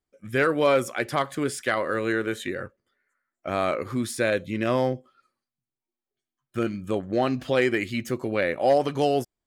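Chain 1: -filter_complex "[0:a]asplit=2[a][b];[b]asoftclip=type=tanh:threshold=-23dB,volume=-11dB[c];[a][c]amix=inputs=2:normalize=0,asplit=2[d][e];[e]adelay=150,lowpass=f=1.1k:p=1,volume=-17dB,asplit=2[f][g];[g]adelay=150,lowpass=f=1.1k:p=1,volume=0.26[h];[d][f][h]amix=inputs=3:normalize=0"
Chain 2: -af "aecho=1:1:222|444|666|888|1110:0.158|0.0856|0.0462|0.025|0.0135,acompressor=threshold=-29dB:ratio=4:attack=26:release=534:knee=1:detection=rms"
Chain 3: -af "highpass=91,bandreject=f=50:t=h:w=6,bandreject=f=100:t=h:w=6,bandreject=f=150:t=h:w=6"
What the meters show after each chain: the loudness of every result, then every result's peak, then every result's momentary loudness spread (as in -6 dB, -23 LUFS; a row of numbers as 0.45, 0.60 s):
-24.0, -33.5, -25.5 LUFS; -9.5, -17.5, -10.0 dBFS; 9, 12, 9 LU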